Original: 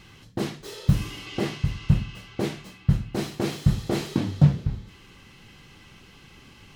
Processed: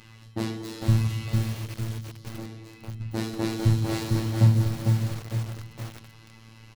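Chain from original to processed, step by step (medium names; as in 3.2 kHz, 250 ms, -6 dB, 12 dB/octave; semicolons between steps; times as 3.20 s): 1.24–3.01 s: compression 4:1, threshold -38 dBFS, peak gain reduction 20.5 dB; 3.78–4.36 s: peaking EQ 210 Hz -8.5 dB 2.1 oct; speakerphone echo 230 ms, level -14 dB; robot voice 112 Hz; on a send: delay 929 ms -14 dB; on the sum: FDN reverb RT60 2 s, low-frequency decay 1.2×, high-frequency decay 0.55×, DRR 5 dB; 1.66–2.29 s: time-frequency box 560–2900 Hz -7 dB; bit-crushed delay 452 ms, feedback 35%, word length 6-bit, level -4 dB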